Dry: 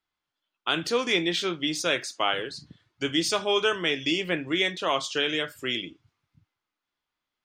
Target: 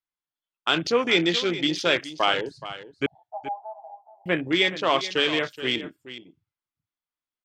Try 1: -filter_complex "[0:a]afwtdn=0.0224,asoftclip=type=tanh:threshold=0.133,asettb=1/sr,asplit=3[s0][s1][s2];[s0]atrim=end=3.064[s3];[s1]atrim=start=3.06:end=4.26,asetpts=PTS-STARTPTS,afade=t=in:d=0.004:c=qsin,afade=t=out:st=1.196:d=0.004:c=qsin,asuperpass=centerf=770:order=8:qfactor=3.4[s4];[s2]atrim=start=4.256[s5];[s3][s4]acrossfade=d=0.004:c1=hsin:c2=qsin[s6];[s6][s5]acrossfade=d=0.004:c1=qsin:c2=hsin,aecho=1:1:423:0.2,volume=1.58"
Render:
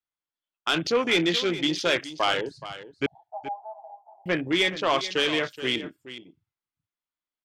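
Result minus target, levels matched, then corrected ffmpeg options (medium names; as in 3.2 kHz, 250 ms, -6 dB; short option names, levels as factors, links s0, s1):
saturation: distortion +20 dB
-filter_complex "[0:a]afwtdn=0.0224,asoftclip=type=tanh:threshold=0.531,asettb=1/sr,asplit=3[s0][s1][s2];[s0]atrim=end=3.064[s3];[s1]atrim=start=3.06:end=4.26,asetpts=PTS-STARTPTS,afade=t=in:d=0.004:c=qsin,afade=t=out:st=1.196:d=0.004:c=qsin,asuperpass=centerf=770:order=8:qfactor=3.4[s4];[s2]atrim=start=4.256[s5];[s3][s4]acrossfade=d=0.004:c1=hsin:c2=qsin[s6];[s6][s5]acrossfade=d=0.004:c1=qsin:c2=hsin,aecho=1:1:423:0.2,volume=1.58"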